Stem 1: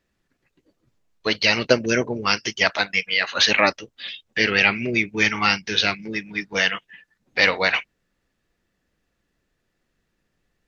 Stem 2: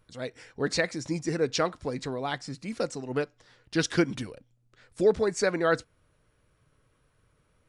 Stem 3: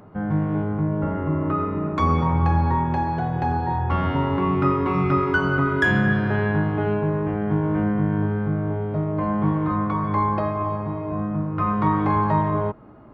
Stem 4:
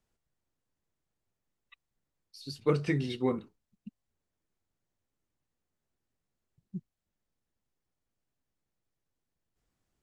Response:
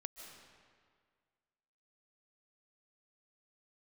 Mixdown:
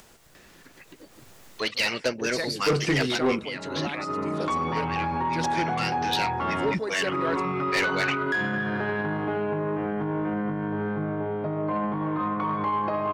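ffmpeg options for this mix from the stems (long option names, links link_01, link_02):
-filter_complex "[0:a]adelay=350,volume=8dB,afade=type=out:start_time=2.87:duration=0.71:silence=0.223872,afade=type=in:start_time=5.5:duration=0.66:silence=0.251189[link_01];[1:a]adelay=1600,volume=-3dB[link_02];[2:a]highpass=130,alimiter=limit=-18dB:level=0:latency=1:release=49,adelay=2500,volume=2dB[link_03];[3:a]dynaudnorm=framelen=210:gausssize=9:maxgain=15dB,volume=0dB,asplit=2[link_04][link_05];[link_05]apad=whole_len=689453[link_06];[link_03][link_06]sidechaincompress=threshold=-43dB:ratio=8:attack=16:release=261[link_07];[link_01][link_02][link_07][link_04]amix=inputs=4:normalize=0,lowshelf=frequency=190:gain=-10.5,acompressor=mode=upward:threshold=-30dB:ratio=2.5,asoftclip=type=tanh:threshold=-17.5dB"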